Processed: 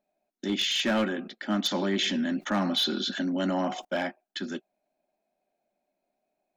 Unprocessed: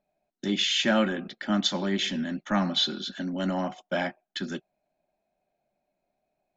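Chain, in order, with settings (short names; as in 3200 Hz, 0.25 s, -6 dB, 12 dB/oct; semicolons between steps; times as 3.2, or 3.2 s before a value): resonant low shelf 180 Hz -8.5 dB, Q 1.5; hard clip -19 dBFS, distortion -18 dB; 1.71–3.85 fast leveller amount 50%; gain -1.5 dB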